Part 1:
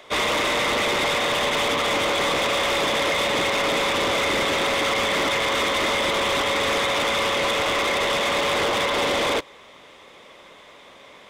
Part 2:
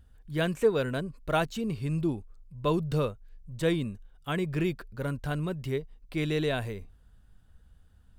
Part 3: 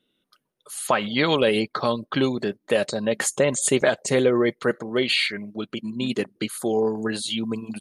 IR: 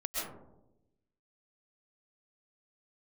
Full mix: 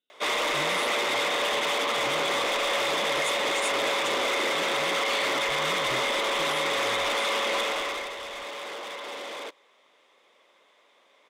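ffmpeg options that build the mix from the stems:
-filter_complex "[0:a]highpass=340,adelay=100,volume=-4dB,afade=t=out:st=7.59:d=0.55:silence=0.298538[a];[1:a]acompressor=threshold=-33dB:ratio=6,adelay=250,volume=-6dB[b];[2:a]highpass=f=950:p=1,volume=-13.5dB,asplit=2[c][d];[d]apad=whole_len=371873[e];[b][e]sidechaincompress=threshold=-44dB:ratio=8:attack=16:release=503[f];[a][f][c]amix=inputs=3:normalize=0"

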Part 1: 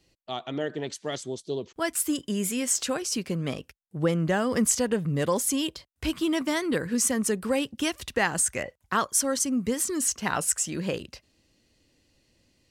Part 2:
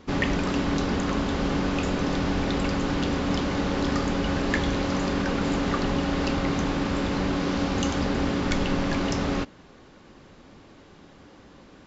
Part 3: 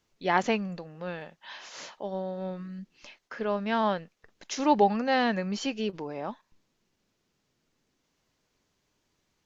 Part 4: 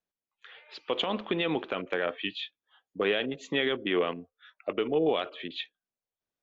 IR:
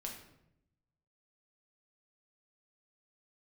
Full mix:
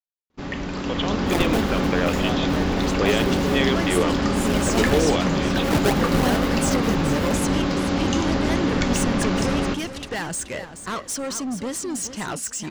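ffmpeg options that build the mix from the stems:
-filter_complex "[0:a]lowpass=7.7k,asoftclip=type=tanh:threshold=-28.5dB,adelay=1950,volume=-5.5dB,asplit=2[a][b];[b]volume=-11dB[c];[1:a]adelay=300,volume=-8.5dB,asplit=3[d][e][f];[e]volume=-8dB[g];[f]volume=-14dB[h];[2:a]acompressor=threshold=-42dB:ratio=1.5,acrusher=samples=35:mix=1:aa=0.000001:lfo=1:lforange=35:lforate=3.2,adelay=1050,volume=-1dB,asplit=2[i][j];[j]volume=-21.5dB[k];[3:a]volume=-5dB[l];[4:a]atrim=start_sample=2205[m];[g][m]afir=irnorm=-1:irlink=0[n];[c][h][k]amix=inputs=3:normalize=0,aecho=0:1:428|856|1284:1|0.17|0.0289[o];[a][d][i][l][n][o]amix=inputs=6:normalize=0,agate=range=-16dB:threshold=-55dB:ratio=16:detection=peak,dynaudnorm=f=220:g=9:m=9.5dB"

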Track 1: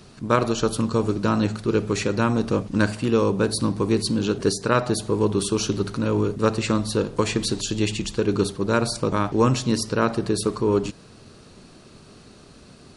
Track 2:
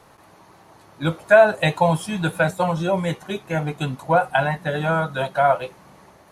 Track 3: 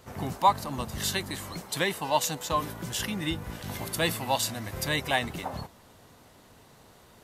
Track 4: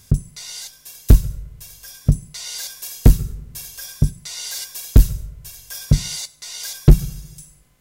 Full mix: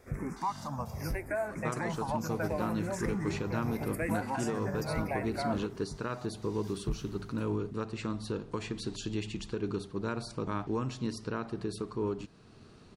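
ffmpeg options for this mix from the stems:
-filter_complex "[0:a]dynaudnorm=f=120:g=21:m=11.5dB,adelay=1350,volume=-12.5dB[a];[1:a]volume=-16dB,asplit=2[b][c];[2:a]asplit=2[d][e];[e]afreqshift=-0.75[f];[d][f]amix=inputs=2:normalize=1,volume=-1dB[g];[3:a]volume=-14.5dB[h];[c]apad=whole_len=344248[i];[h][i]sidechaincompress=threshold=-43dB:ratio=8:attack=5.3:release=1320[j];[a][j]amix=inputs=2:normalize=0,equalizer=f=550:w=5.5:g=-6.5,alimiter=limit=-23dB:level=0:latency=1:release=496,volume=0dB[k];[b][g]amix=inputs=2:normalize=0,asuperstop=centerf=3500:order=12:qfactor=1.5,alimiter=limit=-24dB:level=0:latency=1:release=166,volume=0dB[l];[k][l]amix=inputs=2:normalize=0,highshelf=f=5.2k:g=-10.5"

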